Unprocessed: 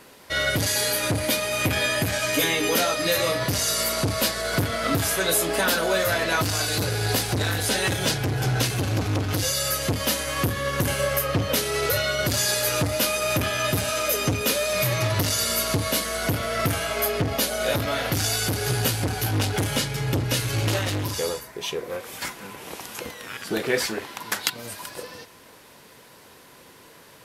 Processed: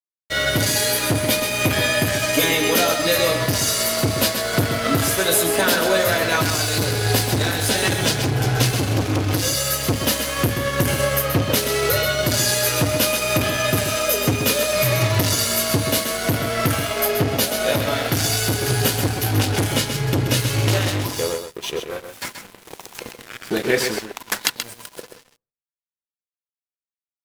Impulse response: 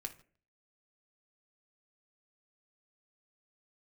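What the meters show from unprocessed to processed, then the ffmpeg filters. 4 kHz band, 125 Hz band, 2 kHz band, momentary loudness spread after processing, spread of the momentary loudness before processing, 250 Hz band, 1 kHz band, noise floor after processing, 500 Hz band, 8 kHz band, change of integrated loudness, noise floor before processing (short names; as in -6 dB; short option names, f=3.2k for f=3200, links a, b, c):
+4.0 dB, +4.5 dB, +3.5 dB, 8 LU, 9 LU, +5.0 dB, +3.5 dB, under -85 dBFS, +4.5 dB, +4.0 dB, +4.0 dB, -50 dBFS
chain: -filter_complex "[0:a]highpass=64,aeval=exprs='sgn(val(0))*max(abs(val(0))-0.0158,0)':c=same,aecho=1:1:130:0.422,asplit=2[a][b];[1:a]atrim=start_sample=2205,lowpass=f=1.4k:w=0.5412,lowpass=f=1.4k:w=1.3066[c];[b][c]afir=irnorm=-1:irlink=0,volume=-13.5dB[d];[a][d]amix=inputs=2:normalize=0,volume=5dB"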